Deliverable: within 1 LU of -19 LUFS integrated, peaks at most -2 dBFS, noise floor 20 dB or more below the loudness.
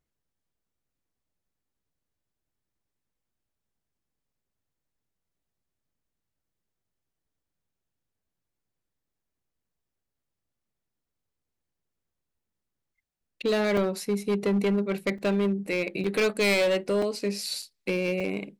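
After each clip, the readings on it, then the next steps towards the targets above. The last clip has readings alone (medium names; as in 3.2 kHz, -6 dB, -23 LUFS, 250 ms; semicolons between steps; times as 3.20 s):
clipped samples 1.3%; clipping level -20.0 dBFS; dropouts 6; longest dropout 3.8 ms; loudness -27.0 LUFS; peak level -20.0 dBFS; loudness target -19.0 LUFS
-> clip repair -20 dBFS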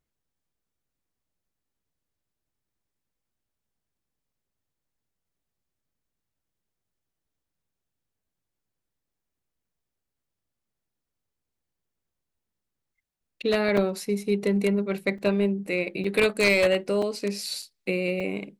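clipped samples 0.0%; dropouts 6; longest dropout 3.8 ms
-> interpolate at 13.77/15.18/16.04/17.02/17.62/18.20 s, 3.8 ms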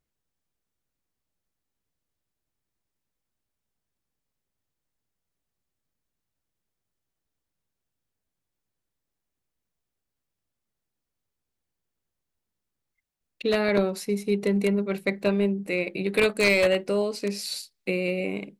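dropouts 0; loudness -25.5 LUFS; peak level -11.0 dBFS; loudness target -19.0 LUFS
-> trim +6.5 dB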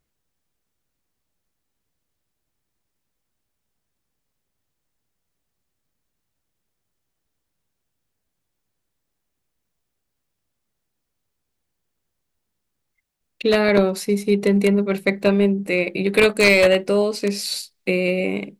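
loudness -19.0 LUFS; peak level -4.5 dBFS; noise floor -78 dBFS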